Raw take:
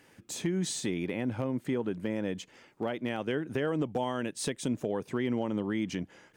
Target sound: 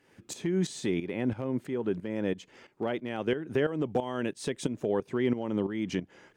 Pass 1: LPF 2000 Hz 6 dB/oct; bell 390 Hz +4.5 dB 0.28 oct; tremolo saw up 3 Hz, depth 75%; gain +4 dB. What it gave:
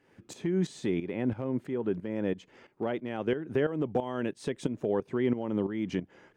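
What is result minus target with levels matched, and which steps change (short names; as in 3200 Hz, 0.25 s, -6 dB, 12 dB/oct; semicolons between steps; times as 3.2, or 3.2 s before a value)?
8000 Hz band -7.0 dB
change: LPF 5900 Hz 6 dB/oct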